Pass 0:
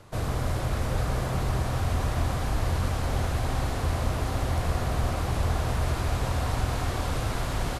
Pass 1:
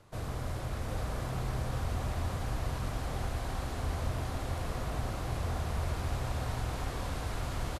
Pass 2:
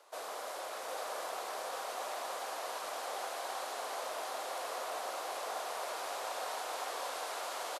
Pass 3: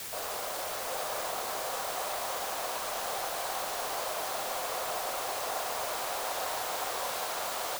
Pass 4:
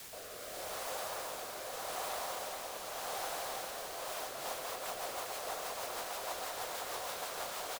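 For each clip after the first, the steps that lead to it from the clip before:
single-tap delay 745 ms −5 dB; level −8.5 dB
high-pass filter 520 Hz 24 dB per octave; parametric band 2,000 Hz −4 dB 1.3 octaves; level +4 dB
low-pass filter 10,000 Hz 12 dB per octave; in parallel at −4 dB: bit-depth reduction 6 bits, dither triangular
rotating-speaker cabinet horn 0.85 Hz, later 6.3 Hz, at 0:03.90; single-tap delay 402 ms −5 dB; level −4.5 dB

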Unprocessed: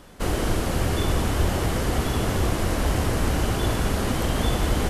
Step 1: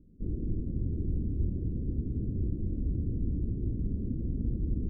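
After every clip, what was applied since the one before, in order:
inverse Chebyshev low-pass filter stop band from 820 Hz, stop band 50 dB
level −7 dB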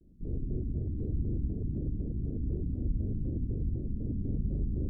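flutter between parallel walls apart 8.1 metres, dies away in 0.79 s
pitch modulation by a square or saw wave square 4 Hz, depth 250 cents
level −3.5 dB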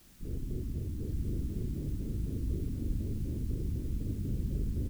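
in parallel at −7.5 dB: bit-depth reduction 8 bits, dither triangular
on the sum: single-tap delay 1,060 ms −4.5 dB
level −6 dB

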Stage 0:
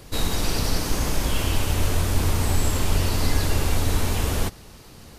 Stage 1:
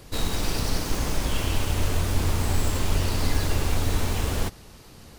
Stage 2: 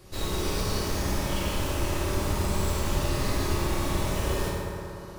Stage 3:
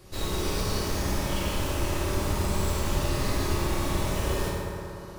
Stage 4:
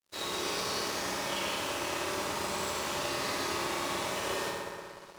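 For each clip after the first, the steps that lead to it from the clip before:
phase distortion by the signal itself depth 0.17 ms; level −2 dB
convolution reverb RT60 3.2 s, pre-delay 3 ms, DRR −7.5 dB; level −8 dB
no processing that can be heard
meter weighting curve A; dead-zone distortion −48.5 dBFS; parametric band 13,000 Hz −2 dB; level +1 dB

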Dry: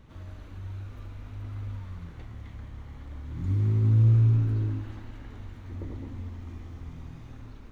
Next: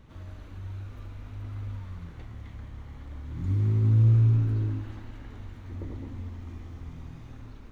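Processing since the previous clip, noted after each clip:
no processing that can be heard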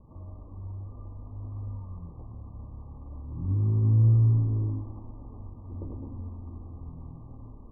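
Chebyshev low-pass filter 1,200 Hz, order 10

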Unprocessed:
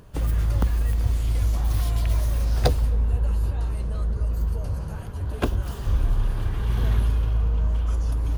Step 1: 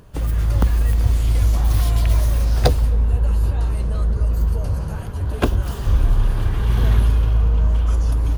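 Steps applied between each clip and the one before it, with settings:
automatic gain control gain up to 4 dB
level +2 dB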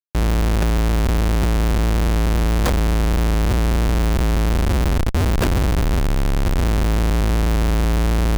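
parametric band 3,700 Hz −5.5 dB 0.89 octaves
comparator with hysteresis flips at −25 dBFS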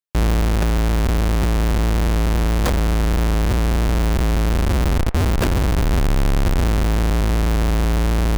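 speech leveller 0.5 s
delay with a band-pass on its return 82 ms, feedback 48%, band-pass 1,100 Hz, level −14 dB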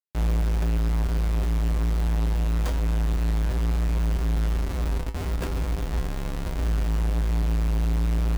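tuned comb filter 56 Hz, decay 0.23 s, harmonics odd, mix 80%
level −4.5 dB

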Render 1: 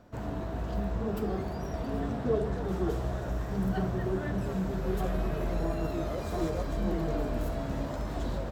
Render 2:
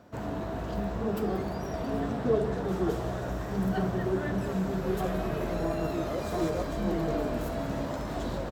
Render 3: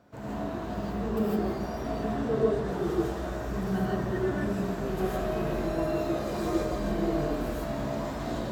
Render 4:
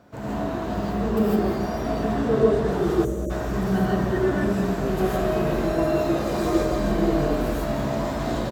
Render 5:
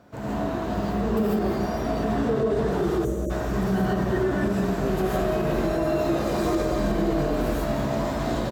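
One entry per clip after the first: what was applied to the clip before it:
high-pass filter 120 Hz 6 dB per octave; single-tap delay 182 ms −14 dB; level +3 dB
reverb whose tail is shaped and stops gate 180 ms rising, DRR −5.5 dB; level −6 dB
time-frequency box erased 0:03.05–0:03.30, 640–5,700 Hz; single-tap delay 208 ms −13 dB; level +6.5 dB
brickwall limiter −15 dBFS, peak gain reduction 8 dB

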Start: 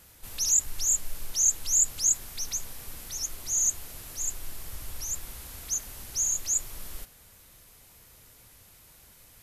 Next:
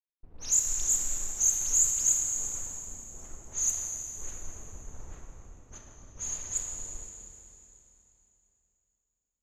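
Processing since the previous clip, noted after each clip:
dead-zone distortion −44.5 dBFS
low-pass that shuts in the quiet parts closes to 370 Hz, open at −21 dBFS
four-comb reverb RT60 3.1 s, combs from 27 ms, DRR 1.5 dB
level −1.5 dB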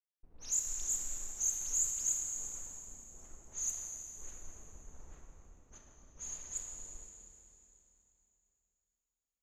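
parametric band 100 Hz −11.5 dB 0.23 octaves
level −8.5 dB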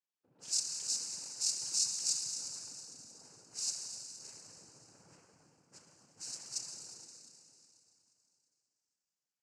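cochlear-implant simulation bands 8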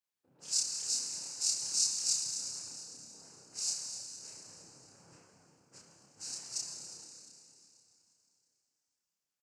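double-tracking delay 30 ms −2 dB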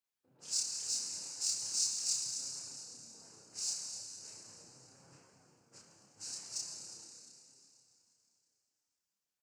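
in parallel at −9 dB: soft clipping −34 dBFS, distortion −7 dB
on the sum: flanger 0.39 Hz, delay 7.2 ms, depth 3.1 ms, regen +68%

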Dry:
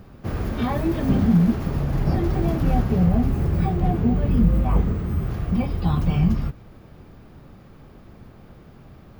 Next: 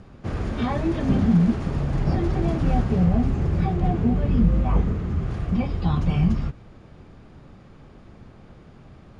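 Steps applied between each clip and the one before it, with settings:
Chebyshev low-pass filter 9,400 Hz, order 6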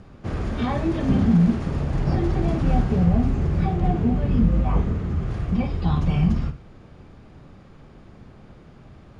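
flutter between parallel walls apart 9 metres, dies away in 0.28 s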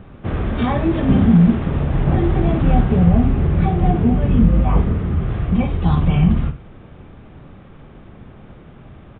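downsampling to 8,000 Hz
level +5.5 dB

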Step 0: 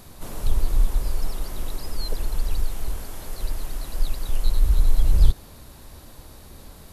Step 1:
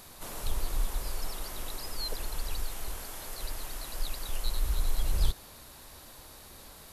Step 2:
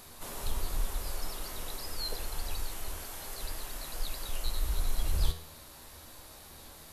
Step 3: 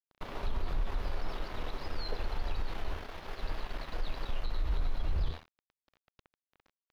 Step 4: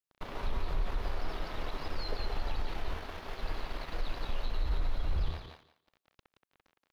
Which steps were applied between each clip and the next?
low-shelf EQ 430 Hz −11.5 dB
tuned comb filter 80 Hz, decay 0.49 s, harmonics all, mix 70%; level +6.5 dB
centre clipping without the shift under −39.5 dBFS; brickwall limiter −27 dBFS, peak gain reduction 11 dB; high-frequency loss of the air 300 metres; level +4.5 dB
feedback echo with a high-pass in the loop 174 ms, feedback 18%, high-pass 170 Hz, level −4.5 dB

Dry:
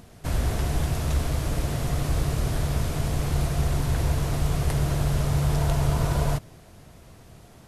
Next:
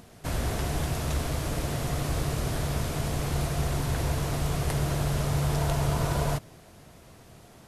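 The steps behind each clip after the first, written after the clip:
low-shelf EQ 110 Hz −7.5 dB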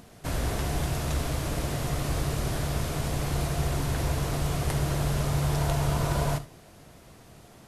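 reverb whose tail is shaped and stops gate 100 ms flat, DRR 12 dB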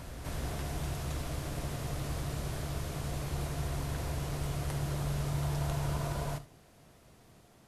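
backwards echo 265 ms −6.5 dB
level −9 dB

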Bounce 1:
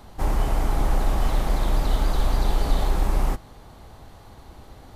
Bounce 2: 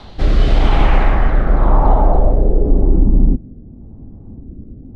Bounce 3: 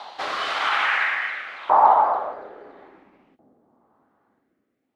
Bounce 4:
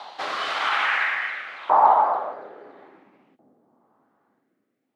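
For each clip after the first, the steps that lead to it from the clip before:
rotating-speaker cabinet horn 0.9 Hz; low-pass filter sweep 3,900 Hz → 250 Hz, 0:00.51–0:03.11; boost into a limiter +12.5 dB; level −1 dB
auto-filter high-pass saw up 0.59 Hz 800–2,800 Hz
high-pass filter 110 Hz 24 dB per octave; level −1 dB

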